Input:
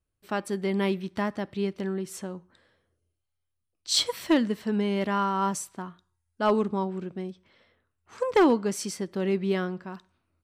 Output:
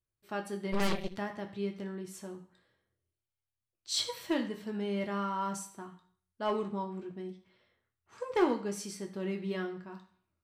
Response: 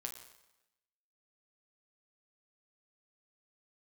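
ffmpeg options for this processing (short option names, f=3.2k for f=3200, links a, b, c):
-filter_complex "[1:a]atrim=start_sample=2205,asetrate=83790,aresample=44100[a];[0:a][a]afir=irnorm=-1:irlink=0,asplit=3[b][c][d];[b]afade=t=out:st=0.72:d=0.02[e];[c]aeval=exprs='0.0668*(cos(1*acos(clip(val(0)/0.0668,-1,1)))-cos(1*PI/2))+0.0299*(cos(8*acos(clip(val(0)/0.0668,-1,1)))-cos(8*PI/2))':c=same,afade=t=in:st=0.72:d=0.02,afade=t=out:st=1.16:d=0.02[f];[d]afade=t=in:st=1.16:d=0.02[g];[e][f][g]amix=inputs=3:normalize=0"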